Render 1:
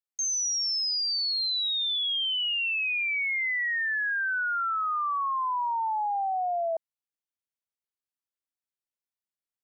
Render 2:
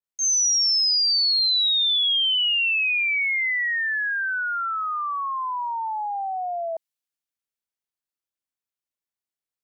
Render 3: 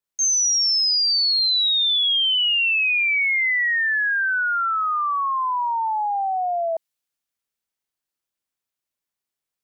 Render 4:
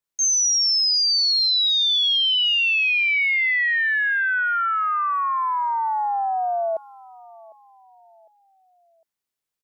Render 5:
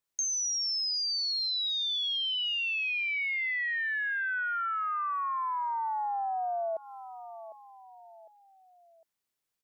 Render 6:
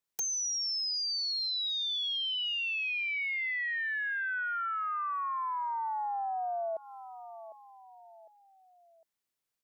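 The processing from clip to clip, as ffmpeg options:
ffmpeg -i in.wav -af "adynamicequalizer=threshold=0.00631:dfrequency=1900:dqfactor=0.7:tfrequency=1900:tqfactor=0.7:attack=5:release=100:ratio=0.375:range=4:mode=boostabove:tftype=highshelf" out.wav
ffmpeg -i in.wav -af "acompressor=threshold=-23dB:ratio=6,volume=5dB" out.wav
ffmpeg -i in.wav -af "aecho=1:1:754|1508|2262:0.0794|0.0326|0.0134" out.wav
ffmpeg -i in.wav -af "acompressor=threshold=-31dB:ratio=6" out.wav
ffmpeg -i in.wav -af "aeval=exprs='(mod(18.8*val(0)+1,2)-1)/18.8':channel_layout=same,volume=-2dB" out.wav

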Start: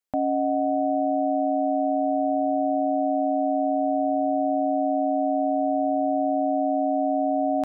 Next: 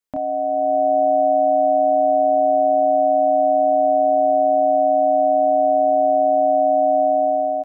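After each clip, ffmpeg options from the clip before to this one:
ffmpeg -i in.wav -filter_complex "[0:a]bandreject=frequency=770:width=12,dynaudnorm=framelen=250:gausssize=5:maxgain=7dB,asplit=2[link_01][link_02];[link_02]adelay=27,volume=-3.5dB[link_03];[link_01][link_03]amix=inputs=2:normalize=0" out.wav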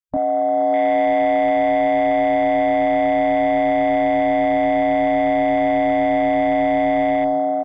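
ffmpeg -i in.wav -filter_complex "[0:a]acrossover=split=340[link_01][link_02];[link_02]asoftclip=type=tanh:threshold=-21.5dB[link_03];[link_01][link_03]amix=inputs=2:normalize=0,asubboost=boost=5:cutoff=180,afwtdn=0.0251,volume=6.5dB" out.wav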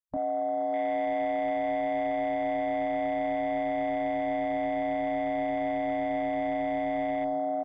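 ffmpeg -i in.wav -af "alimiter=limit=-17dB:level=0:latency=1,volume=-6.5dB" out.wav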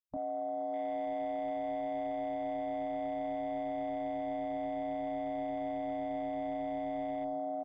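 ffmpeg -i in.wav -af "equalizer=frequency=1900:width_type=o:width=1:gain=-8,volume=-6.5dB" out.wav

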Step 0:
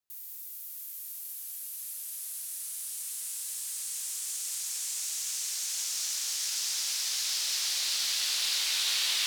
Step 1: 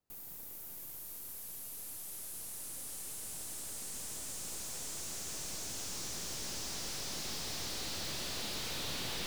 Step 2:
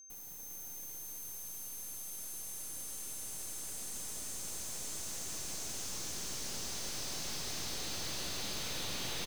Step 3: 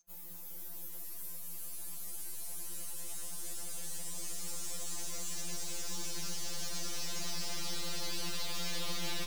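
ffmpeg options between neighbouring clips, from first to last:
ffmpeg -i in.wav -af "aeval=exprs='(tanh(70.8*val(0)+0.1)-tanh(0.1))/70.8':channel_layout=same,tiltshelf=frequency=970:gain=9.5,volume=6dB" out.wav
ffmpeg -i in.wav -filter_complex "[0:a]aeval=exprs='val(0)+0.00282*sin(2*PI*6300*n/s)':channel_layout=same,asplit=2[link_01][link_02];[link_02]aecho=0:1:397:0.562[link_03];[link_01][link_03]amix=inputs=2:normalize=0,volume=-1.5dB" out.wav
ffmpeg -i in.wav -af "afftfilt=real='re*2.83*eq(mod(b,8),0)':imag='im*2.83*eq(mod(b,8),0)':win_size=2048:overlap=0.75,volume=3dB" out.wav

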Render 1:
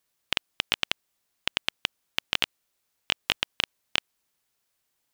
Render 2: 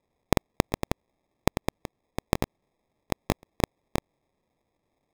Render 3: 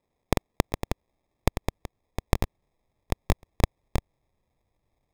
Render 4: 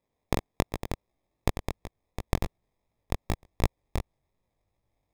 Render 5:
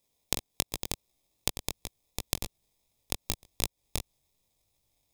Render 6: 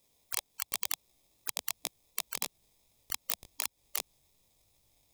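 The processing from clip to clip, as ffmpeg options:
ffmpeg -i in.wav -af "acrusher=samples=30:mix=1:aa=0.000001" out.wav
ffmpeg -i in.wav -af "asubboost=boost=4:cutoff=120,volume=-1.5dB" out.wav
ffmpeg -i in.wav -af "flanger=delay=17:depth=5.1:speed=2.7" out.wav
ffmpeg -i in.wav -af "acompressor=threshold=-28dB:ratio=6,aexciter=amount=5.5:drive=4.4:freq=2600,volume=-2.5dB" out.wav
ffmpeg -i in.wav -af "afftfilt=real='re*lt(hypot(re,im),0.0224)':imag='im*lt(hypot(re,im),0.0224)':win_size=1024:overlap=0.75,volume=5.5dB" out.wav

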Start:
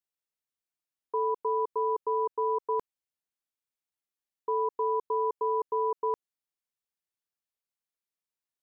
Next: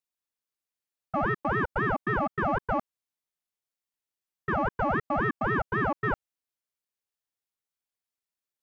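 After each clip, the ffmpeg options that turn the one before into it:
ffmpeg -i in.wav -af "aeval=exprs='0.0891*(cos(1*acos(clip(val(0)/0.0891,-1,1)))-cos(1*PI/2))+0.00708*(cos(3*acos(clip(val(0)/0.0891,-1,1)))-cos(3*PI/2))+0.000631*(cos(8*acos(clip(val(0)/0.0891,-1,1)))-cos(8*PI/2))':channel_layout=same,aeval=exprs='val(0)*sin(2*PI*500*n/s+500*0.75/3.8*sin(2*PI*3.8*n/s))':channel_layout=same,volume=5dB" out.wav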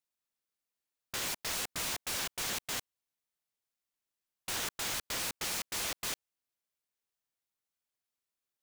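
ffmpeg -i in.wav -af "aeval=exprs='(mod(29.9*val(0)+1,2)-1)/29.9':channel_layout=same" out.wav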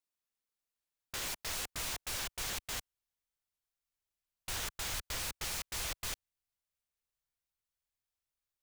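ffmpeg -i in.wav -af "asubboost=boost=6:cutoff=92,volume=-3dB" out.wav

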